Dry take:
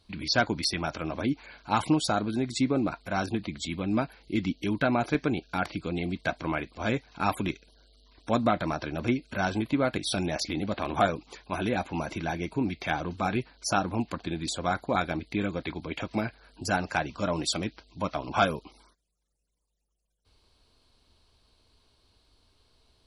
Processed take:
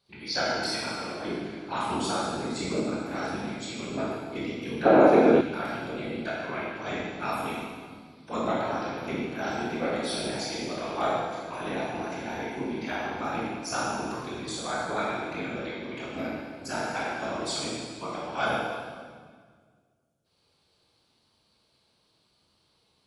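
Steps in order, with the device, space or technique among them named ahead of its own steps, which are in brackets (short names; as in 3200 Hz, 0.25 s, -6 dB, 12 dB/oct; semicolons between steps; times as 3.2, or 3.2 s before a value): whispering ghost (whisperiser; HPF 300 Hz 6 dB/oct; reverb RT60 1.7 s, pre-delay 16 ms, DRR -6.5 dB); 4.85–5.41 bell 480 Hz +14 dB 2.6 oct; gain -7.5 dB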